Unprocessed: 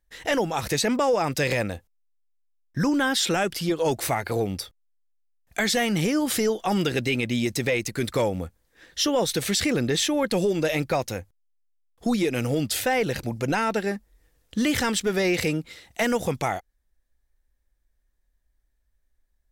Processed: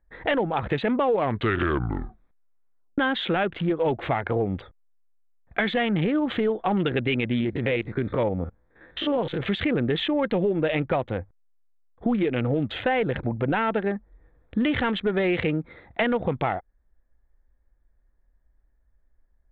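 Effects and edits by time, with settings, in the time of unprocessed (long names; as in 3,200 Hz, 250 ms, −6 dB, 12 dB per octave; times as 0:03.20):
0:00.99: tape stop 1.99 s
0:07.40–0:09.41: spectrum averaged block by block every 50 ms
whole clip: adaptive Wiener filter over 15 samples; downward compressor 2 to 1, threshold −32 dBFS; elliptic low-pass filter 3,400 Hz, stop band 40 dB; level +7.5 dB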